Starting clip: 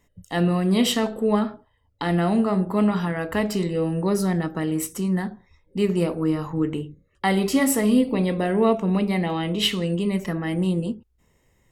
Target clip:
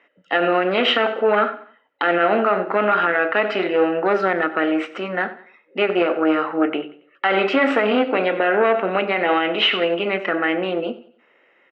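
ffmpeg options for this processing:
-af "aeval=exprs='(tanh(5.62*val(0)+0.55)-tanh(0.55))/5.62':c=same,highpass=f=360:w=0.5412,highpass=f=360:w=1.3066,equalizer=f=420:t=q:w=4:g=-6,equalizer=f=980:t=q:w=4:g=-8,equalizer=f=1.4k:t=q:w=4:g=10,equalizer=f=2.6k:t=q:w=4:g=5,lowpass=f=2.8k:w=0.5412,lowpass=f=2.8k:w=1.3066,aecho=1:1:93|186|279:0.133|0.0493|0.0183,alimiter=level_in=21.5dB:limit=-1dB:release=50:level=0:latency=1,volume=-7dB"

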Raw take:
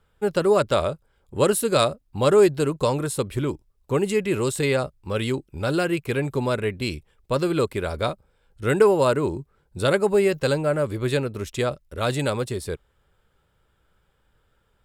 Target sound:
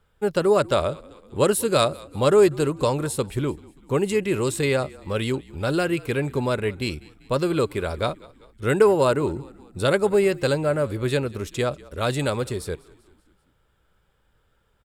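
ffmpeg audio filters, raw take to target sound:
-filter_complex "[0:a]asplit=5[a][b][c][d][e];[b]adelay=194,afreqshift=-46,volume=-22.5dB[f];[c]adelay=388,afreqshift=-92,volume=-28dB[g];[d]adelay=582,afreqshift=-138,volume=-33.5dB[h];[e]adelay=776,afreqshift=-184,volume=-39dB[i];[a][f][g][h][i]amix=inputs=5:normalize=0"

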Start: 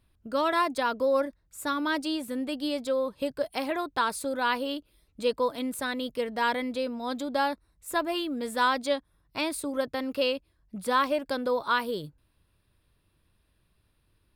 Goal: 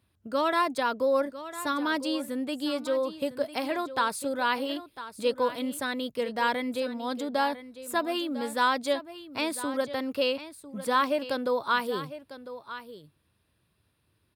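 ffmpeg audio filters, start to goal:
-af "highpass=f=72:w=0.5412,highpass=f=72:w=1.3066,aecho=1:1:1001:0.211"

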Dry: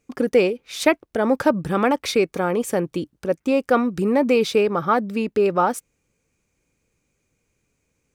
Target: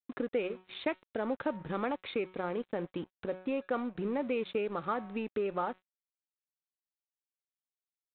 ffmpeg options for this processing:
-af "highpass=f=100:p=1,bandreject=f=185.4:t=h:w=4,bandreject=f=370.8:t=h:w=4,bandreject=f=556.2:t=h:w=4,bandreject=f=741.6:t=h:w=4,bandreject=f=927:t=h:w=4,bandreject=f=1.1124k:t=h:w=4,bandreject=f=1.2978k:t=h:w=4,bandreject=f=1.4832k:t=h:w=4,bandreject=f=1.6686k:t=h:w=4,bandreject=f=1.854k:t=h:w=4,bandreject=f=2.0394k:t=h:w=4,bandreject=f=2.2248k:t=h:w=4,bandreject=f=2.4102k:t=h:w=4,bandreject=f=2.5956k:t=h:w=4,acompressor=threshold=-35dB:ratio=2,aresample=8000,aeval=exprs='sgn(val(0))*max(abs(val(0))-0.00447,0)':c=same,aresample=44100,volume=-3dB"

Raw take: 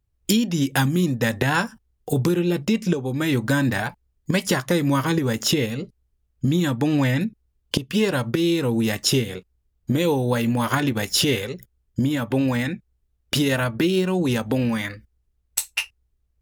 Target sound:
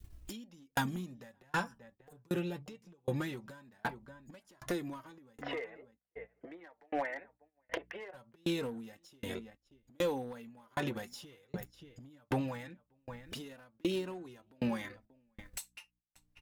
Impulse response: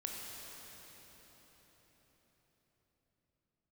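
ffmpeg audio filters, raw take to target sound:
-filter_complex "[0:a]asplit=3[a][b][c];[a]afade=t=out:st=5.4:d=0.02[d];[b]highpass=f=440:w=0.5412,highpass=f=440:w=1.3066,equalizer=f=690:t=q:w=4:g=8,equalizer=f=1.2k:t=q:w=4:g=-4,equalizer=f=2k:t=q:w=4:g=9,lowpass=f=2k:w=0.5412,lowpass=f=2k:w=1.3066,afade=t=in:st=5.4:d=0.02,afade=t=out:st=8.13:d=0.02[e];[c]afade=t=in:st=8.13:d=0.02[f];[d][e][f]amix=inputs=3:normalize=0,acompressor=mode=upward:threshold=-27dB:ratio=2.5,aeval=exprs='val(0)+0.00158*(sin(2*PI*60*n/s)+sin(2*PI*2*60*n/s)/2+sin(2*PI*3*60*n/s)/3+sin(2*PI*4*60*n/s)/4+sin(2*PI*5*60*n/s)/5)':c=same,flanger=delay=2.7:depth=4.6:regen=35:speed=0.21:shape=triangular,asplit=2[g][h];[h]adelay=583.1,volume=-20dB,highshelf=f=4k:g=-13.1[i];[g][i]amix=inputs=2:normalize=0,agate=range=-13dB:threshold=-49dB:ratio=16:detection=peak,adynamicequalizer=threshold=0.00891:dfrequency=820:dqfactor=0.87:tfrequency=820:tqfactor=0.87:attack=5:release=100:ratio=0.375:range=3:mode=boostabove:tftype=bell,acompressor=threshold=-32dB:ratio=4,asoftclip=type=hard:threshold=-27.5dB,aeval=exprs='val(0)*pow(10,-38*if(lt(mod(1.3*n/s,1),2*abs(1.3)/1000),1-mod(1.3*n/s,1)/(2*abs(1.3)/1000),(mod(1.3*n/s,1)-2*abs(1.3)/1000)/(1-2*abs(1.3)/1000))/20)':c=same,volume=4.5dB"

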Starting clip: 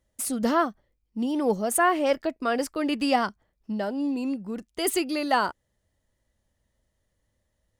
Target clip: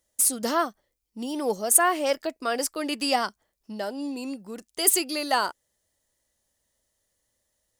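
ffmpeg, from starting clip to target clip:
-af "bass=f=250:g=-10,treble=f=4k:g=11,volume=-1dB"

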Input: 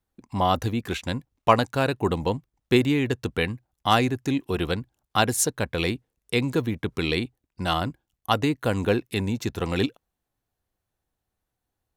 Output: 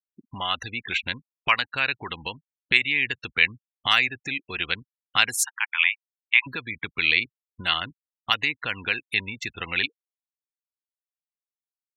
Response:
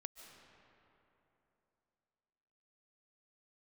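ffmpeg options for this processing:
-filter_complex "[0:a]asplit=3[a][b][c];[a]afade=t=out:st=5.43:d=0.02[d];[b]asuperpass=centerf=1700:order=20:qfactor=0.62,afade=t=in:st=5.43:d=0.02,afade=t=out:st=6.46:d=0.02[e];[c]afade=t=in:st=6.46:d=0.02[f];[d][e][f]amix=inputs=3:normalize=0,afftfilt=real='re*gte(hypot(re,im),0.0178)':imag='im*gte(hypot(re,im),0.0178)':win_size=1024:overlap=0.75,acrossover=split=1200[g][h];[g]acompressor=threshold=-36dB:ratio=12[i];[i][h]amix=inputs=2:normalize=0,equalizer=f=2.3k:w=1.3:g=13.5,volume=-1dB"

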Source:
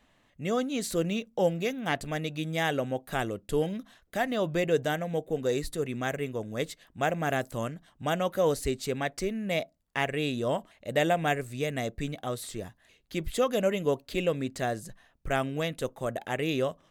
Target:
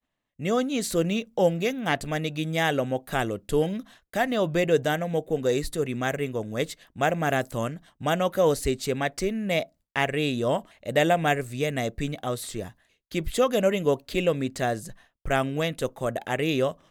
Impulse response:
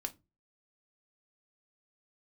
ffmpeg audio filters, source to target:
-af "agate=range=-33dB:threshold=-52dB:ratio=3:detection=peak,volume=4dB"

